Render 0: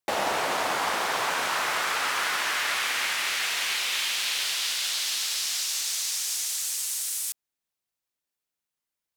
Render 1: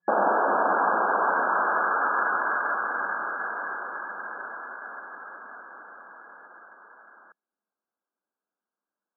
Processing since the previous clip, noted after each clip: FFT band-pass 180–1700 Hz; trim +5.5 dB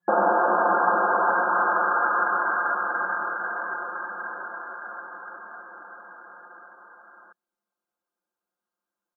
comb 5.7 ms, depth 77%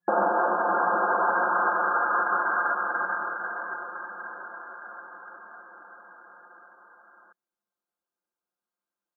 peak limiter -15 dBFS, peak gain reduction 5.5 dB; upward expansion 1.5:1, over -33 dBFS; trim +1 dB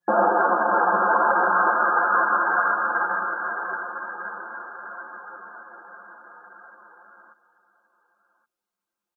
delay 1121 ms -17 dB; three-phase chorus; trim +7 dB

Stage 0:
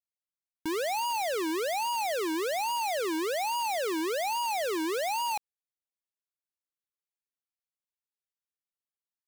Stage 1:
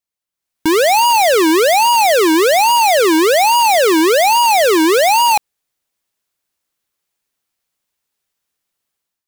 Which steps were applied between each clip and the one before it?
level rider gain up to 11 dB; trim +8 dB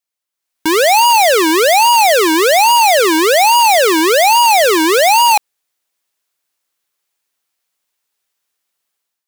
bass shelf 260 Hz -12 dB; trim +3 dB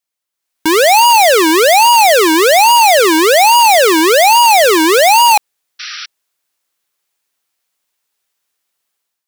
painted sound noise, 5.79–6.06 s, 1.2–5.9 kHz -28 dBFS; trim +2 dB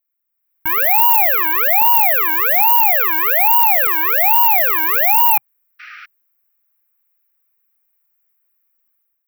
FFT filter 130 Hz 0 dB, 350 Hz -24 dB, 810 Hz -8 dB, 1.2 kHz -3 dB, 2.4 kHz -4 dB, 3.6 kHz -23 dB, 9.6 kHz -28 dB, 14 kHz +12 dB; trim -2 dB

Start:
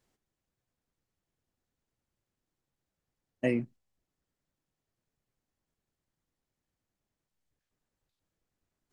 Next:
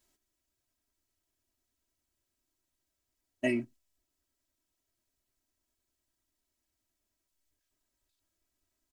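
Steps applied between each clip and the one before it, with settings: treble shelf 3.4 kHz +10.5 dB; comb 3.1 ms, depth 87%; trim -4 dB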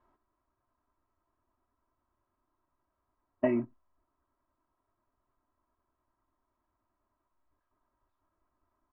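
compression, threshold -30 dBFS, peak gain reduction 6 dB; resonant low-pass 1.1 kHz, resonance Q 4.5; trim +5.5 dB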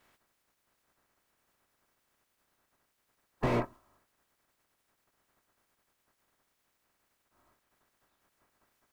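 spectral peaks clipped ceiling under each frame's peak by 29 dB; slew-rate limiter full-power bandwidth 20 Hz; trim +3.5 dB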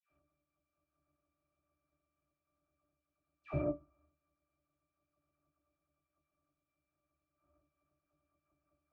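pitch-class resonator D, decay 0.15 s; phase dispersion lows, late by 105 ms, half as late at 1.3 kHz; trim +5 dB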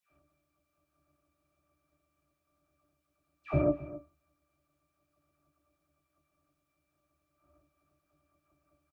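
delay 264 ms -16.5 dB; trim +8 dB

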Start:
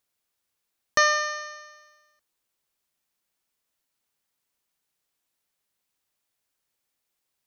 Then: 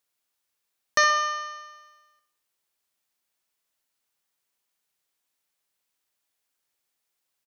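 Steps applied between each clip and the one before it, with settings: bass shelf 340 Hz -6 dB; feedback delay 64 ms, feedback 49%, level -10 dB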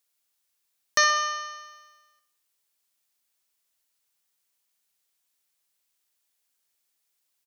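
treble shelf 2.8 kHz +7.5 dB; trim -3 dB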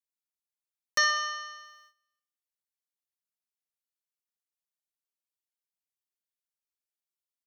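gate -54 dBFS, range -15 dB; comb 5.6 ms, depth 68%; trim -6.5 dB

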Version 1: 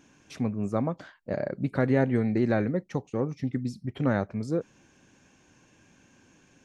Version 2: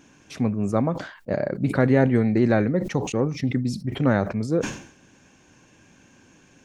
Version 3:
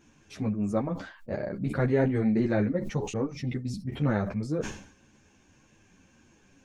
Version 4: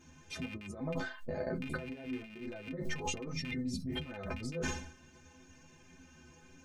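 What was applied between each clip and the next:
decay stretcher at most 97 dB/s; trim +5 dB
bass shelf 83 Hz +9.5 dB; three-phase chorus; trim -4 dB
rattle on loud lows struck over -28 dBFS, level -20 dBFS; compressor with a negative ratio -35 dBFS, ratio -1; inharmonic resonator 76 Hz, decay 0.31 s, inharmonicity 0.03; trim +4.5 dB

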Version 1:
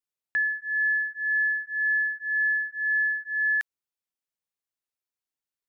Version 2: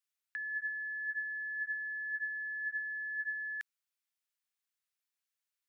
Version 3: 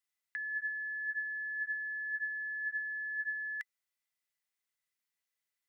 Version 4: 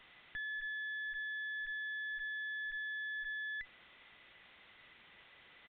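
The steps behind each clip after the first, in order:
peak limiter -25.5 dBFS, peak gain reduction 5.5 dB; compressor with a negative ratio -35 dBFS, ratio -1; Chebyshev high-pass 1.5 kHz, order 2; trim -3 dB
small resonant body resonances 2 kHz, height 14 dB
jump at every zero crossing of -45 dBFS; valve stage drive 42 dB, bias 0.75; resampled via 8 kHz; trim +2.5 dB

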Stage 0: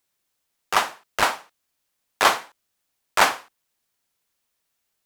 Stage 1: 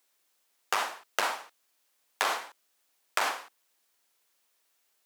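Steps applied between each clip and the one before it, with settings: high-pass 320 Hz 12 dB/octave; peak limiter -11 dBFS, peak gain reduction 8.5 dB; compression 6:1, threshold -29 dBFS, peak gain reduction 10.5 dB; trim +3.5 dB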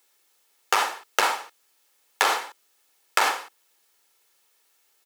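comb 2.3 ms, depth 36%; trim +6.5 dB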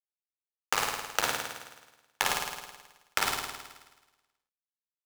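compression 4:1, threshold -26 dBFS, peak gain reduction 9 dB; small samples zeroed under -25 dBFS; on a send: flutter echo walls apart 9.2 m, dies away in 1.2 s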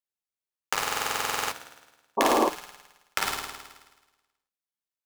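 painted sound noise, 2.17–2.49 s, 220–1200 Hz -22 dBFS; on a send at -13.5 dB: reverberation, pre-delay 5 ms; on the sum: buffer glitch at 0.82 s, samples 2048, times 14

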